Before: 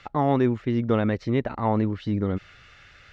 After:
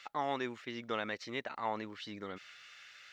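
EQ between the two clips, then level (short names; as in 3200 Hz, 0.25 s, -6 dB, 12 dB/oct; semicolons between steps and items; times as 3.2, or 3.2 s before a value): differentiator; bell 68 Hz -4 dB 1.1 oct; high shelf 4100 Hz -7.5 dB; +9.0 dB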